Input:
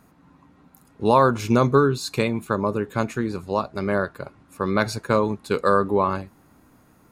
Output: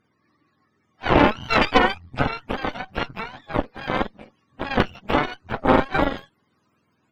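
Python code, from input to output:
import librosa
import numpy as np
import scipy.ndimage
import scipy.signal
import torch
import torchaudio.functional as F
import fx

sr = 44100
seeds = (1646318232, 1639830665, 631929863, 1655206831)

y = fx.octave_mirror(x, sr, pivot_hz=560.0)
y = fx.cheby_harmonics(y, sr, harmonics=(3, 4, 5, 7), levels_db=(-12, -7, -21, -25), full_scale_db=-5.5)
y = y * 10.0 ** (2.0 / 20.0)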